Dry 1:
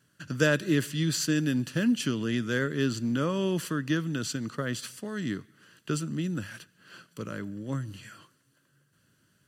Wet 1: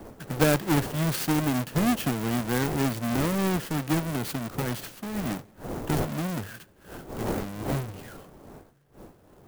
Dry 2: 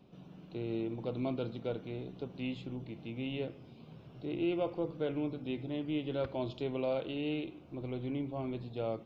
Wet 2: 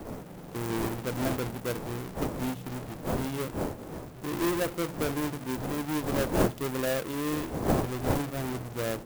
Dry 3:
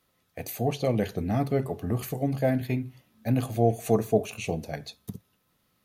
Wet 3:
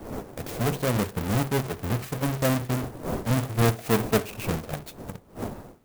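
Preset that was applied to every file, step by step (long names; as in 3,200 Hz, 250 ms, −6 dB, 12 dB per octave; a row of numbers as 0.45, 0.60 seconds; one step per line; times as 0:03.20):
each half-wave held at its own peak
wind on the microphone 510 Hz −36 dBFS
converter with an unsteady clock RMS 0.047 ms
normalise the peak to −12 dBFS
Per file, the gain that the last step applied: −3.0, +0.5, −3.5 decibels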